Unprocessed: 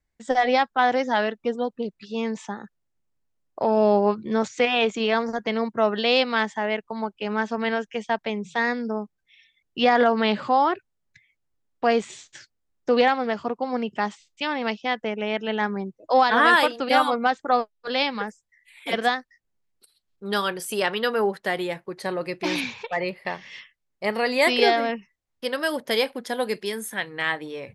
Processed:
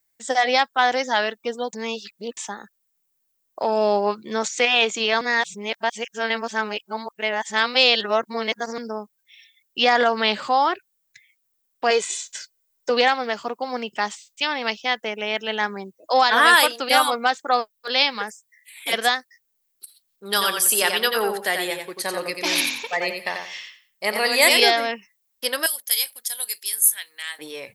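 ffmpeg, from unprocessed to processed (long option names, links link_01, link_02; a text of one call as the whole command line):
ffmpeg -i in.wav -filter_complex "[0:a]asettb=1/sr,asplit=3[link_01][link_02][link_03];[link_01]atrim=end=11.904[link_04];[link_02]atrim=start=11.9:end=12.9,asetpts=PTS-STARTPTS,afade=type=in:duration=0.004:curve=qsin,afade=type=out:start_time=0.996:duration=0.004:curve=qsin,aecho=1:1:2:0.65,atrim=end_sample=44100[link_05];[link_03]atrim=start=12.896[link_06];[link_04][link_05]acrossfade=duration=0.004:curve1=hsin:curve2=qsin[link_07];[link_07][link_06]acrossfade=duration=0.004:curve1=qsin:curve2=hsin,asettb=1/sr,asplit=3[link_08][link_09][link_10];[link_08]atrim=end=20.274[link_11];[link_09]atrim=start=20.27:end=24.6,asetpts=PTS-STARTPTS,afade=type=in:duration=0.004:curve=qsin,afade=type=out:start_time=4.326:duration=0.004:curve=qsin,aecho=1:1:89|178|267:0.531|0.122|0.0281,atrim=end_sample=190953[link_12];[link_10]atrim=start=24.596[link_13];[link_11][link_12]acrossfade=duration=0.004:curve1=hsin:curve2=qsin[link_14];[link_14][link_13]acrossfade=duration=0.004:curve1=qsin:curve2=hsin,asettb=1/sr,asplit=3[link_15][link_16][link_17];[link_15]atrim=end=25.664[link_18];[link_16]atrim=start=25.66:end=27.39,asetpts=PTS-STARTPTS,afade=type=in:duration=0.004:curve=qsin,afade=type=out:start_time=1.726:duration=0.004:curve=qsin,aderivative[link_19];[link_17]atrim=start=27.386[link_20];[link_18][link_19]acrossfade=duration=0.004:curve1=hsin:curve2=qsin[link_21];[link_21][link_20]acrossfade=duration=0.004:curve1=qsin:curve2=hsin,asplit=5[link_22][link_23][link_24][link_25][link_26];[link_22]atrim=end=1.732[link_27];[link_23]atrim=start=1.728:end=2.372,asetpts=PTS-STARTPTS,areverse[link_28];[link_24]atrim=start=2.368:end=5.212[link_29];[link_25]atrim=start=5.208:end=8.782,asetpts=PTS-STARTPTS,areverse[link_30];[link_26]atrim=start=8.778[link_31];[link_27][link_28]acrossfade=duration=0.004:curve1=hsin:curve2=hsin[link_32];[link_32][link_29]acrossfade=duration=0.004:curve1=hsin:curve2=hsin[link_33];[link_33][link_30]acrossfade=duration=0.004:curve1=hsin:curve2=hsin[link_34];[link_34][link_31]acrossfade=duration=0.004:curve1=hsin:curve2=hsin,aemphasis=mode=production:type=riaa,volume=1.5dB" out.wav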